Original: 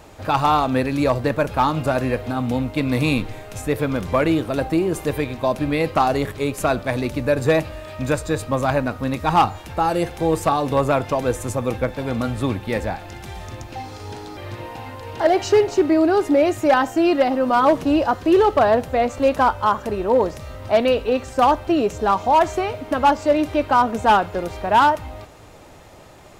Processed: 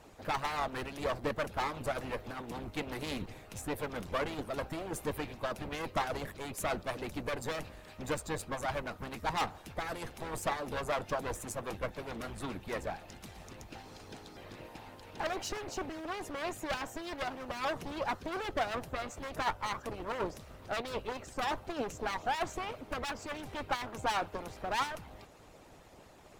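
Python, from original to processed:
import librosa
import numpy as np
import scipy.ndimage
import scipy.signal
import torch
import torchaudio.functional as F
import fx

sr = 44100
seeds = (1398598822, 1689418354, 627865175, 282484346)

y = fx.clip_asym(x, sr, top_db=-31.0, bottom_db=-13.5)
y = fx.hpss(y, sr, part='harmonic', gain_db=-16)
y = y * librosa.db_to_amplitude(-6.5)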